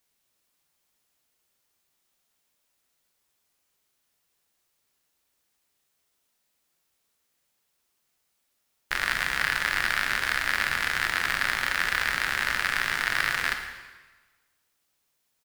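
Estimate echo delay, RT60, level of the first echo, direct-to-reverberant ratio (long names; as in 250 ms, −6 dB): 112 ms, 1.3 s, −15.5 dB, 4.5 dB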